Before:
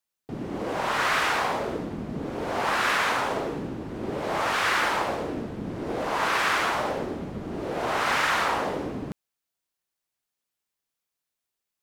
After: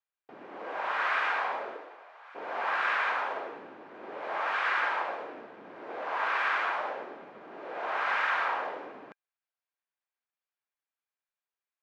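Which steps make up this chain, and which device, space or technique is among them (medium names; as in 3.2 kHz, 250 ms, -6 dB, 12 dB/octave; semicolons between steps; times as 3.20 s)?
tin-can telephone (band-pass 650–2300 Hz; small resonant body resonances 1.6/2.4 kHz, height 6 dB); 1.73–2.34 s: high-pass 290 Hz -> 1.1 kHz 24 dB/octave; trim -3.5 dB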